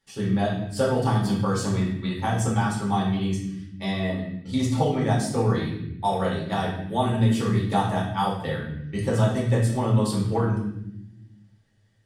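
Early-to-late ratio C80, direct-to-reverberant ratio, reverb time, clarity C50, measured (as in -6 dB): 7.5 dB, -5.5 dB, 0.85 s, 4.0 dB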